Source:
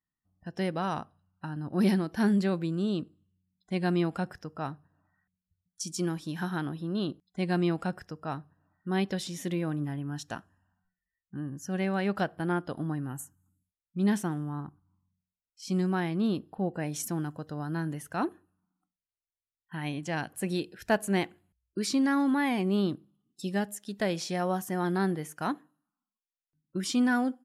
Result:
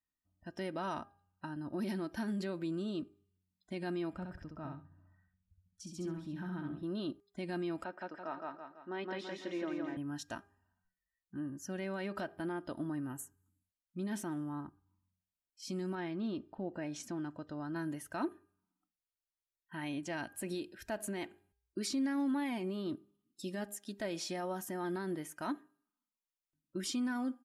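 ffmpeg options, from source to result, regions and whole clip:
ffmpeg -i in.wav -filter_complex "[0:a]asettb=1/sr,asplit=3[link_01][link_02][link_03];[link_01]atrim=end=4.134[link_04];[link_02]atrim=start=4.13:end=6.83,asetpts=PTS-STARTPTS,afade=type=in:duration=0.004:curve=qsin,afade=type=out:start_time=2.696:duration=0.004:curve=qsin,bass=frequency=250:gain=12,treble=frequency=4000:gain=-11,acompressor=threshold=-49dB:ratio=1.5:attack=3.2:release=140:knee=1:detection=peak,aecho=1:1:66|132|198:0.631|0.12|0.0228,atrim=end_sample=119070[link_05];[link_03]atrim=start=6.826[link_06];[link_04][link_05]acrossfade=duration=0.004:curve1=hsin:curve2=qsin[link_07];[link_07][link_06]acrossfade=duration=0.004:curve1=qsin:curve2=hsin,asettb=1/sr,asplit=3[link_08][link_09][link_10];[link_08]atrim=end=7.844[link_11];[link_09]atrim=start=7.84:end=9.97,asetpts=PTS-STARTPTS,afade=type=in:duration=0.004:curve=qsin,afade=type=out:start_time=2.126:duration=0.004:curve=qsin,highpass=350,lowpass=2700,aecho=1:1:166|332|498|664|830|996:0.708|0.326|0.15|0.0689|0.0317|0.0146,atrim=end_sample=93933[link_12];[link_10]atrim=start=9.966[link_13];[link_11][link_12]acrossfade=duration=0.004:curve1=hsin:curve2=qsin[link_14];[link_14][link_13]acrossfade=duration=0.004:curve1=qsin:curve2=hsin,asettb=1/sr,asplit=3[link_15][link_16][link_17];[link_15]atrim=end=15.954[link_18];[link_16]atrim=start=15.95:end=17.76,asetpts=PTS-STARTPTS,afade=type=in:duration=0.004:curve=qsin,afade=type=out:start_time=1.806:duration=0.004:curve=qsin,lowpass=5000,acompressor=threshold=-31dB:ratio=2:attack=3.2:release=140:knee=1:detection=peak[link_19];[link_17]atrim=start=17.756[link_20];[link_18][link_19]acrossfade=duration=0.004:curve1=hsin:curve2=qsin[link_21];[link_21][link_20]acrossfade=duration=0.004:curve1=qsin:curve2=hsin,alimiter=level_in=0.5dB:limit=-24dB:level=0:latency=1,volume=-0.5dB,aecho=1:1:3.2:0.5,bandreject=frequency=403.2:width_type=h:width=4,bandreject=frequency=806.4:width_type=h:width=4,bandreject=frequency=1209.6:width_type=h:width=4,bandreject=frequency=1612.8:width_type=h:width=4,bandreject=frequency=2016:width_type=h:width=4,bandreject=frequency=2419.2:width_type=h:width=4,volume=-5dB" out.wav

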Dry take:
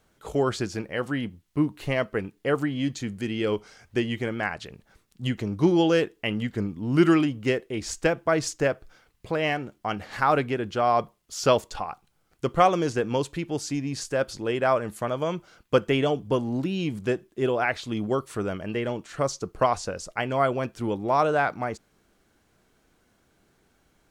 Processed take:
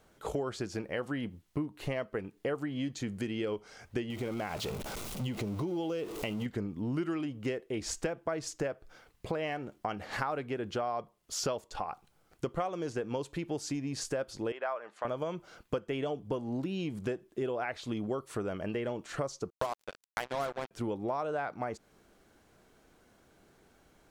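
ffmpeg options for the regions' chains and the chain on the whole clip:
ffmpeg -i in.wav -filter_complex "[0:a]asettb=1/sr,asplit=3[link_01][link_02][link_03];[link_01]atrim=end=4.104[link_04];[link_02]atrim=start=4.1:end=6.46,asetpts=PTS-STARTPTS,afade=type=in:duration=0.004:curve=qsin,afade=type=out:start_time=2.356:duration=0.004:curve=qsin,aeval=exprs='val(0)+0.5*0.0178*sgn(val(0))':channel_layout=same,equalizer=frequency=1700:width_type=o:width=0.27:gain=-10.5,acompressor=threshold=-29dB:ratio=2.5:attack=3.2:release=140:knee=1:detection=peak[link_05];[link_03]atrim=start=6.456[link_06];[link_04][link_05]acrossfade=duration=0.004:curve1=hsin:curve2=qsin[link_07];[link_07][link_06]acrossfade=duration=0.004:curve1=qsin:curve2=hsin,asettb=1/sr,asplit=3[link_08][link_09][link_10];[link_08]atrim=end=14.524[link_11];[link_09]atrim=start=14.52:end=15.05,asetpts=PTS-STARTPTS,afade=type=in:duration=0.004:curve=qsin,afade=type=out:start_time=0.526:duration=0.004:curve=qsin,highpass=790,lowpass=6000,aemphasis=mode=reproduction:type=75kf[link_12];[link_10]atrim=start=15.046[link_13];[link_11][link_12]acrossfade=duration=0.004:curve1=hsin:curve2=qsin[link_14];[link_14][link_13]acrossfade=duration=0.004:curve1=qsin:curve2=hsin,asettb=1/sr,asplit=3[link_15][link_16][link_17];[link_15]atrim=end=19.504[link_18];[link_16]atrim=start=19.5:end=20.71,asetpts=PTS-STARTPTS,afade=type=in:duration=0.004:curve=qsin,afade=type=out:start_time=1.206:duration=0.004:curve=qsin,lowshelf=frequency=150:gain=-4,bandreject=frequency=50:width_type=h:width=6,bandreject=frequency=100:width_type=h:width=6,bandreject=frequency=150:width_type=h:width=6,bandreject=frequency=200:width_type=h:width=6,bandreject=frequency=250:width_type=h:width=6,bandreject=frequency=300:width_type=h:width=6,acrusher=bits=3:mix=0:aa=0.5[link_19];[link_17]atrim=start=20.706[link_20];[link_18][link_19]acrossfade=duration=0.004:curve1=hsin:curve2=qsin[link_21];[link_21][link_20]acrossfade=duration=0.004:curve1=qsin:curve2=hsin,equalizer=frequency=570:width_type=o:width=2:gain=4,acompressor=threshold=-32dB:ratio=6" out.wav

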